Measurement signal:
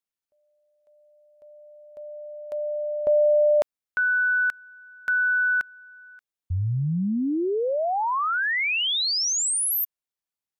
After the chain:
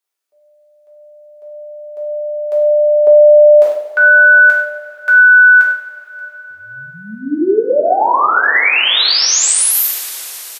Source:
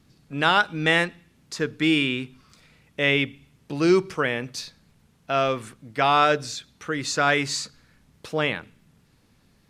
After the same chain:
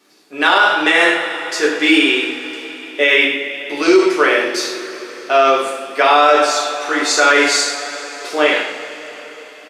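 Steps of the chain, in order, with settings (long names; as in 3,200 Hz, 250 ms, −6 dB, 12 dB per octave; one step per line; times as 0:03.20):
high-pass filter 320 Hz 24 dB per octave
slap from a distant wall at 17 metres, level −13 dB
coupled-rooms reverb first 0.56 s, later 4.8 s, from −18 dB, DRR −4.5 dB
boost into a limiter +7.5 dB
level −1 dB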